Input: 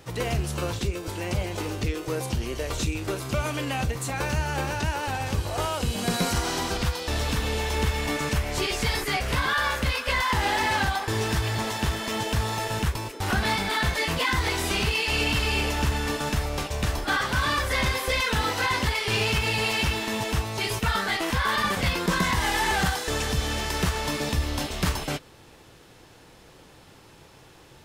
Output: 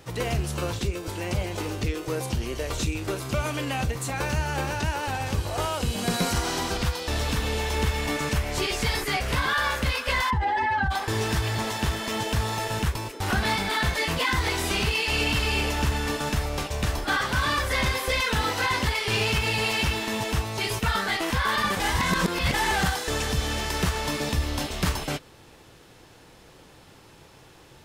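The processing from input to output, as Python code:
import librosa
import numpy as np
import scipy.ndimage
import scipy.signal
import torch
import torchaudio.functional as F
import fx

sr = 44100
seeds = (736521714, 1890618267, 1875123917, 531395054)

y = fx.spec_expand(x, sr, power=1.9, at=(10.29, 10.9), fade=0.02)
y = fx.edit(y, sr, fx.reverse_span(start_s=21.8, length_s=0.74), tone=tone)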